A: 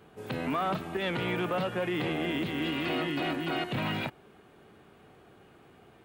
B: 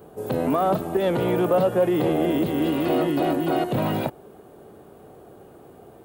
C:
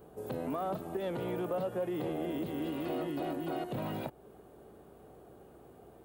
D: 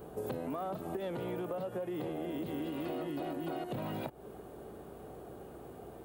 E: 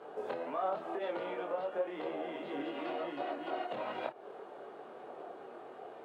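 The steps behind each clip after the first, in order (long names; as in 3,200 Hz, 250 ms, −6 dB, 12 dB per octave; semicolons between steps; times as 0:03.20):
drawn EQ curve 210 Hz 0 dB, 560 Hz +6 dB, 2,300 Hz −12 dB, 5,900 Hz −3 dB, 13,000 Hz +8 dB; level +7.5 dB
downward compressor 1.5 to 1, threshold −33 dBFS, peak gain reduction 6.5 dB; mains hum 60 Hz, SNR 31 dB; level −8.5 dB
downward compressor 10 to 1, threshold −41 dBFS, peak gain reduction 11.5 dB; level +6.5 dB
multi-voice chorus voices 6, 0.8 Hz, delay 25 ms, depth 4.9 ms; band-pass filter 560–3,000 Hz; level +8.5 dB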